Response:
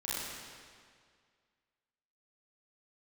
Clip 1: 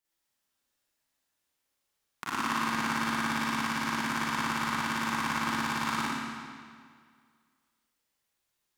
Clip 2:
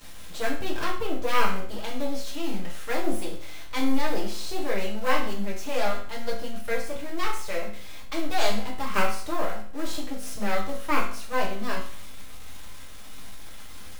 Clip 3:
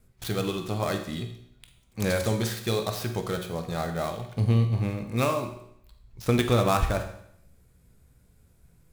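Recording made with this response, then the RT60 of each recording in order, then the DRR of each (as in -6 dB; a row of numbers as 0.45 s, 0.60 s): 1; 2.0 s, 0.50 s, 0.70 s; -10.0 dB, -3.5 dB, 5.5 dB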